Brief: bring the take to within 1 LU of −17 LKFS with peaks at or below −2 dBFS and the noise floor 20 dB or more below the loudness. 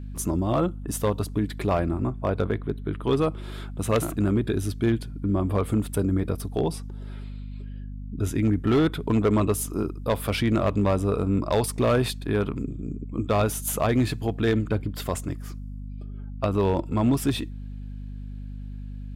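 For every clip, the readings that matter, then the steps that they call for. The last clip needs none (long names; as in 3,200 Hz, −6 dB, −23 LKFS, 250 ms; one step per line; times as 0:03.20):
share of clipped samples 0.9%; peaks flattened at −15.5 dBFS; mains hum 50 Hz; hum harmonics up to 250 Hz; level of the hum −33 dBFS; integrated loudness −25.5 LKFS; sample peak −15.5 dBFS; target loudness −17.0 LKFS
→ clipped peaks rebuilt −15.5 dBFS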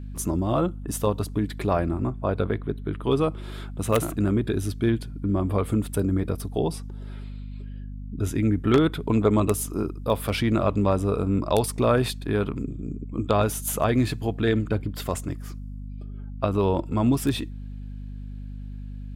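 share of clipped samples 0.0%; mains hum 50 Hz; hum harmonics up to 250 Hz; level of the hum −33 dBFS
→ mains-hum notches 50/100/150/200/250 Hz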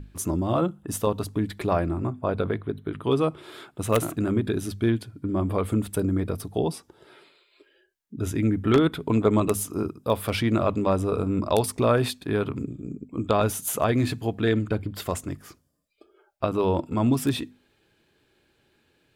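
mains hum none found; integrated loudness −26.0 LKFS; sample peak −6.0 dBFS; target loudness −17.0 LKFS
→ level +9 dB
brickwall limiter −2 dBFS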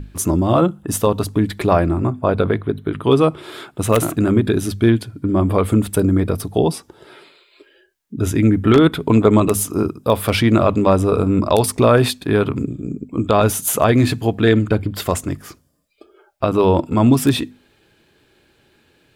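integrated loudness −17.0 LKFS; sample peak −2.0 dBFS; background noise floor −58 dBFS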